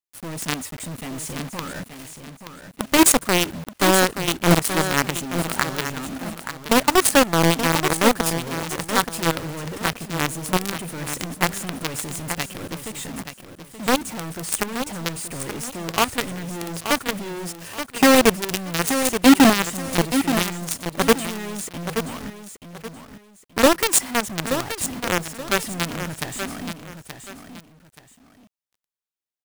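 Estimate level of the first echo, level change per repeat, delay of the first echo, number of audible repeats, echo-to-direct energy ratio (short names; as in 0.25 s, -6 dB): -9.0 dB, -10.5 dB, 0.877 s, 2, -8.5 dB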